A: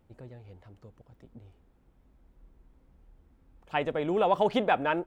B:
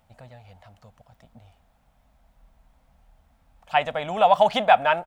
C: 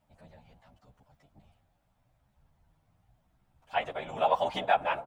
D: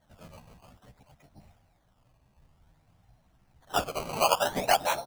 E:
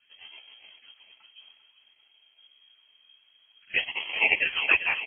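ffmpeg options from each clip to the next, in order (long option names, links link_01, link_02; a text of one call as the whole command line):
ffmpeg -i in.wav -af "firequalizer=gain_entry='entry(220,0);entry(350,-15);entry(660,12);entry(970,7);entry(1700,7);entry(3500,10)':delay=0.05:min_phase=1" out.wav
ffmpeg -i in.wav -filter_complex "[0:a]bandreject=frequency=172.7:width_type=h:width=4,bandreject=frequency=345.4:width_type=h:width=4,bandreject=frequency=518.1:width_type=h:width=4,bandreject=frequency=690.8:width_type=h:width=4,bandreject=frequency=863.5:width_type=h:width=4,bandreject=frequency=1036.2:width_type=h:width=4,bandreject=frequency=1208.9:width_type=h:width=4,bandreject=frequency=1381.6:width_type=h:width=4,afftfilt=real='hypot(re,im)*cos(2*PI*random(0))':imag='hypot(re,im)*sin(2*PI*random(1))':win_size=512:overlap=0.75,asplit=2[link_01][link_02];[link_02]adelay=11.2,afreqshift=0.8[link_03];[link_01][link_03]amix=inputs=2:normalize=1" out.wav
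ffmpeg -i in.wav -filter_complex "[0:a]asplit=2[link_01][link_02];[link_02]acompressor=threshold=-36dB:ratio=6,volume=-1.5dB[link_03];[link_01][link_03]amix=inputs=2:normalize=0,acrusher=samples=17:mix=1:aa=0.000001:lfo=1:lforange=17:lforate=0.55" out.wav
ffmpeg -i in.wav -af "aecho=1:1:396|792|1188|1584|1980|2376:0.282|0.161|0.0916|0.0522|0.0298|0.017,lowpass=frequency=2800:width_type=q:width=0.5098,lowpass=frequency=2800:width_type=q:width=0.6013,lowpass=frequency=2800:width_type=q:width=0.9,lowpass=frequency=2800:width_type=q:width=2.563,afreqshift=-3300,volume=1.5dB" out.wav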